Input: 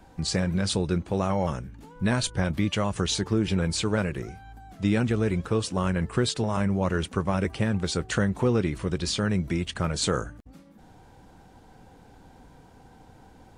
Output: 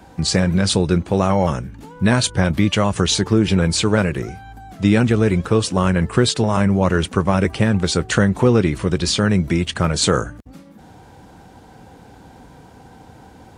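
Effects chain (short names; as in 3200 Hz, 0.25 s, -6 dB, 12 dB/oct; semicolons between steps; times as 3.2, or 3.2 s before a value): HPF 57 Hz; gain +9 dB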